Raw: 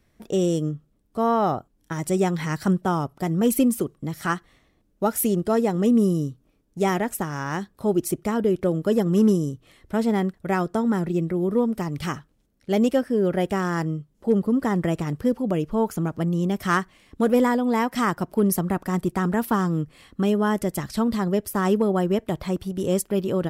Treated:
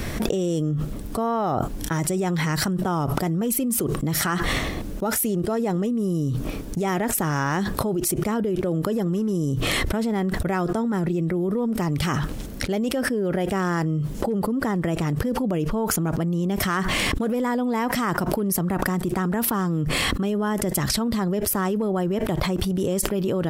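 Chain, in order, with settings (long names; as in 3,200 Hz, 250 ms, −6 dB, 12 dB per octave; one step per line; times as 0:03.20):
brickwall limiter −15 dBFS, peak gain reduction 5.5 dB
envelope flattener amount 100%
level −4.5 dB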